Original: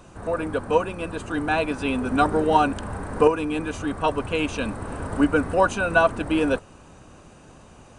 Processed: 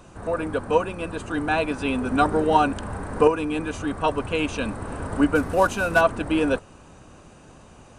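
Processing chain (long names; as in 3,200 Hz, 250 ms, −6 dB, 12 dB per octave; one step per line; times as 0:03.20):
0:05.35–0:06.01: variable-slope delta modulation 64 kbit/s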